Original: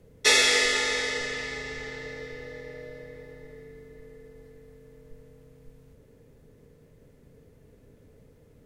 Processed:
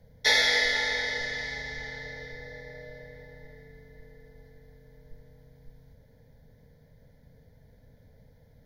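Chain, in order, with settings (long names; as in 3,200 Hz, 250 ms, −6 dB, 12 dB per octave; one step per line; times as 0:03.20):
0:02.32–0:02.81: notch filter 2,900 Hz, Q 6.7
dynamic equaliser 7,800 Hz, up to −6 dB, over −40 dBFS, Q 0.88
phaser with its sweep stopped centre 1,800 Hz, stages 8
level +1.5 dB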